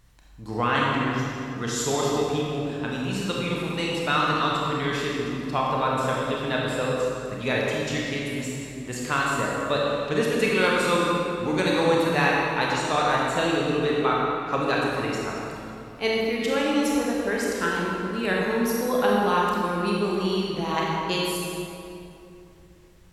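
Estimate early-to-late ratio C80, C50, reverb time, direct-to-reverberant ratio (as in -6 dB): -0.5 dB, -2.0 dB, 2.8 s, -4.0 dB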